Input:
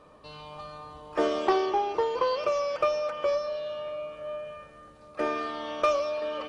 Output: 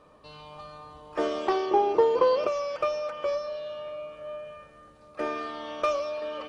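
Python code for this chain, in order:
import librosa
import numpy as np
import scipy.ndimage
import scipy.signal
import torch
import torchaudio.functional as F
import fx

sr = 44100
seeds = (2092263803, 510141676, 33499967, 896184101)

y = fx.peak_eq(x, sr, hz=310.0, db=10.0, octaves=2.7, at=(1.71, 2.47))
y = F.gain(torch.from_numpy(y), -2.0).numpy()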